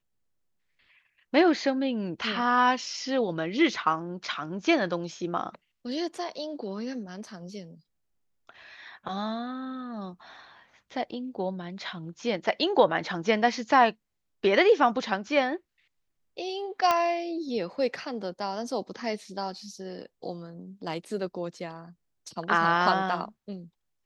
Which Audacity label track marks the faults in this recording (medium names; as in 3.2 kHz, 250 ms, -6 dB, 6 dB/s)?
16.910000	16.910000	pop -10 dBFS